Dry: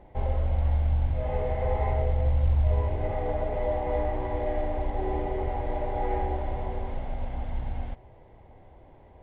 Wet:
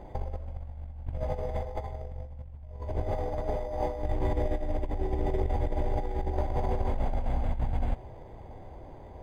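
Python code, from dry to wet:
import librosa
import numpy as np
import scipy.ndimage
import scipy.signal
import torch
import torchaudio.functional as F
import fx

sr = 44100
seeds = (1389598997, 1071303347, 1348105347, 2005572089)

y = fx.peak_eq(x, sr, hz=850.0, db=-7.5, octaves=2.2, at=(4.02, 6.33))
y = fx.over_compress(y, sr, threshold_db=-31.0, ratio=-0.5)
y = np.interp(np.arange(len(y)), np.arange(len(y))[::8], y[::8])
y = F.gain(torch.from_numpy(y), 2.0).numpy()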